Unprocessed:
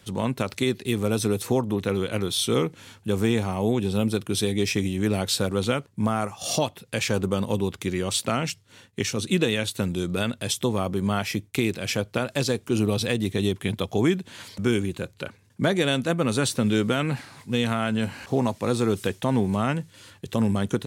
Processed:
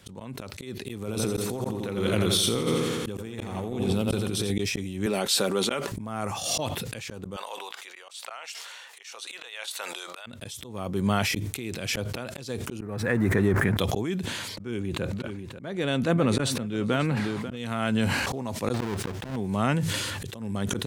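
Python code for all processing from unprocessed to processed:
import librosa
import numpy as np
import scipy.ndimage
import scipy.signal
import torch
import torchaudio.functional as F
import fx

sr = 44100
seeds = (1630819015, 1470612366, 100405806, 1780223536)

y = fx.chain(x, sr, fx.echo_feedback(ms=85, feedback_pct=58, wet_db=-6),
    fx.over_compress(threshold_db=-25.0, ratio=-0.5), at=(0.99, 4.51))
y = fx.chain(y, sr, fx.highpass(hz=290.0, slope=12),
    fx.comb(ms=5.1, depth=0.36), at=(5.06, 5.92))
y = fx.chain(y, sr, fx.highpass(hz=700.0, slope=24),
    fx.high_shelf(hz=7600.0, db=-7.0), at=(7.36, 10.26))
y = fx.chain(y, sr, fx.zero_step(step_db=-36.0),
    fx.high_shelf_res(hz=2400.0, db=-11.0, q=3.0),
    fx.pre_swell(db_per_s=22.0), at=(12.8, 13.77))
y = fx.chain(y, sr, fx.high_shelf(hz=3900.0, db=-9.5),
    fx.echo_single(ms=541, db=-16.0), at=(14.56, 17.57))
y = fx.chain(y, sr, fx.halfwave_hold(),
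    fx.lowpass(hz=2900.0, slope=6), at=(18.74, 19.36))
y = fx.auto_swell(y, sr, attack_ms=428.0)
y = fx.sustainer(y, sr, db_per_s=25.0)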